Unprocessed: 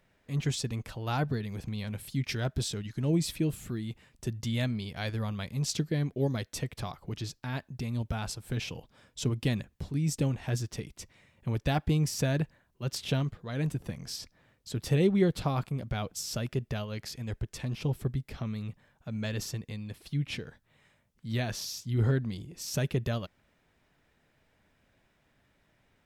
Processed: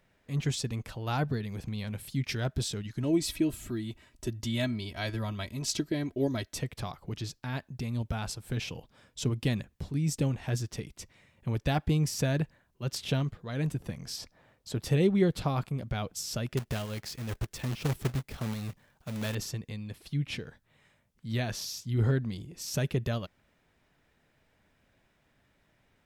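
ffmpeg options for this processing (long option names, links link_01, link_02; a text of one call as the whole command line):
ffmpeg -i in.wav -filter_complex "[0:a]asettb=1/sr,asplit=3[link_01][link_02][link_03];[link_01]atrim=end=3.034[link_04];[link_02]atrim=start=3.03:end=6.54,asetpts=PTS-STARTPTS,afade=type=in:duration=0.004:curve=qsin,afade=type=out:start_time=3.506:duration=0.004:curve=qsin,aecho=1:1:3.1:0.65,atrim=end_sample=154791[link_05];[link_03]atrim=start=6.536[link_06];[link_04][link_05]acrossfade=duration=0.004:curve1=hsin:curve2=qsin[link_07];[link_07][link_06]acrossfade=duration=0.004:curve1=qsin:curve2=hsin,asettb=1/sr,asplit=3[link_08][link_09][link_10];[link_08]atrim=end=14.174[link_11];[link_09]atrim=start=14.17:end=14.83,asetpts=PTS-STARTPTS,afade=type=in:duration=0.004:curve=qsin,afade=type=out:start_time=0.656:duration=0.004:curve=qsin,equalizer=frequency=730:width_type=o:width=1.6:gain=6.5[link_12];[link_10]atrim=start=14.826[link_13];[link_11][link_12]acrossfade=duration=0.004:curve1=hsin:curve2=qsin[link_14];[link_14][link_13]acrossfade=duration=0.004:curve1=qsin:curve2=hsin,asettb=1/sr,asplit=3[link_15][link_16][link_17];[link_15]atrim=end=16.574[link_18];[link_16]atrim=start=16.57:end=19.35,asetpts=PTS-STARTPTS,afade=type=in:duration=0.004:curve=qsin,afade=type=out:start_time=2.776:duration=0.004:curve=qsin,acrusher=bits=2:mode=log:mix=0:aa=0.000001[link_19];[link_17]atrim=start=19.346[link_20];[link_18][link_19]acrossfade=duration=0.004:curve1=hsin:curve2=qsin[link_21];[link_21][link_20]acrossfade=duration=0.004:curve1=qsin:curve2=hsin" out.wav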